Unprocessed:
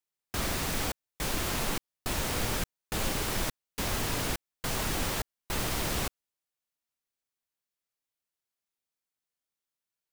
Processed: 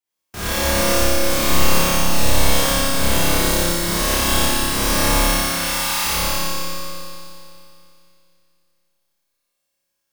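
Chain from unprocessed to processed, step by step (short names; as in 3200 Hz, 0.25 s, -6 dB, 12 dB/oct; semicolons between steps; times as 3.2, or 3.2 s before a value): spectral trails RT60 0.76 s; 3.31–3.91 notch 2500 Hz, Q 5.3; 5.13–6.05 Chebyshev high-pass 850 Hz, order 4; flutter echo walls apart 5 m, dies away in 1.5 s; Schroeder reverb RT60 2.7 s, combs from 31 ms, DRR -8 dB; gain -3 dB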